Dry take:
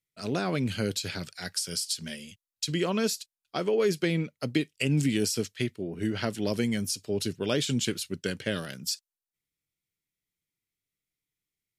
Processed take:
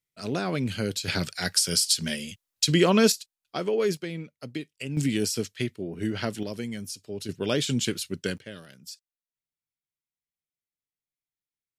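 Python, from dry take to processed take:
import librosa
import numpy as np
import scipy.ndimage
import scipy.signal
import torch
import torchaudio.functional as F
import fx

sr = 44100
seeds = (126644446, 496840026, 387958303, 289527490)

y = fx.gain(x, sr, db=fx.steps((0.0, 0.5), (1.08, 8.0), (3.12, 0.0), (3.97, -7.5), (4.97, 0.5), (6.43, -6.0), (7.29, 1.5), (8.38, -11.0)))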